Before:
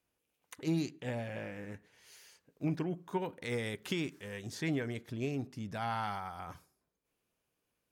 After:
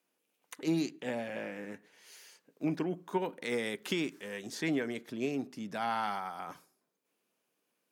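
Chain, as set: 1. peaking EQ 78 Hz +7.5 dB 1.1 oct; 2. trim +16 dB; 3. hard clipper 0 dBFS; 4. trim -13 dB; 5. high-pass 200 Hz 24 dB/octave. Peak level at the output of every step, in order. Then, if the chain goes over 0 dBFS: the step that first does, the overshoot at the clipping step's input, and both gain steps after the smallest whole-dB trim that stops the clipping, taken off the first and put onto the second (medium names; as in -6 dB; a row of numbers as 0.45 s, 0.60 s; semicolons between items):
-21.5 dBFS, -5.5 dBFS, -5.5 dBFS, -18.5 dBFS, -19.0 dBFS; nothing clips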